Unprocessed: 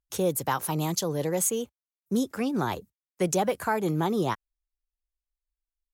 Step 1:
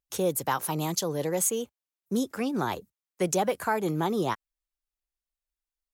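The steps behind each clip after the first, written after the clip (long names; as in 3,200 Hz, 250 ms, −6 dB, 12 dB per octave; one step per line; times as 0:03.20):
low-shelf EQ 140 Hz −6.5 dB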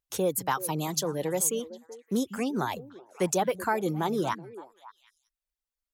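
reverb reduction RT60 0.72 s
echo through a band-pass that steps 189 ms, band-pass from 160 Hz, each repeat 1.4 octaves, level −10.5 dB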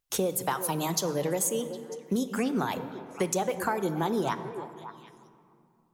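mains-hum notches 50/100/150 Hz
downward compressor, threshold −30 dBFS, peak gain reduction 9 dB
on a send at −10 dB: convolution reverb RT60 2.5 s, pre-delay 4 ms
on the sum: level +5 dB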